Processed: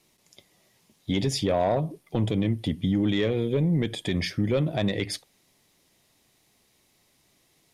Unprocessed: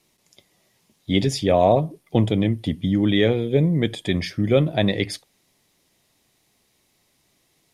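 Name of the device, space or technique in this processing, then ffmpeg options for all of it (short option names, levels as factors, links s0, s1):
soft clipper into limiter: -af "asoftclip=type=tanh:threshold=0.335,alimiter=limit=0.15:level=0:latency=1:release=129"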